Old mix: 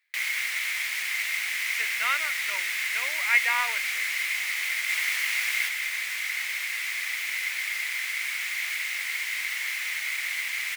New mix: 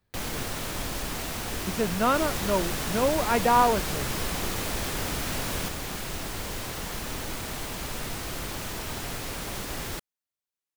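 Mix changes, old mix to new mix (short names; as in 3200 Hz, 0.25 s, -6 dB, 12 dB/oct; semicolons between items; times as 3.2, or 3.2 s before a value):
second sound: entry -2.75 s; master: remove resonant high-pass 2100 Hz, resonance Q 9.2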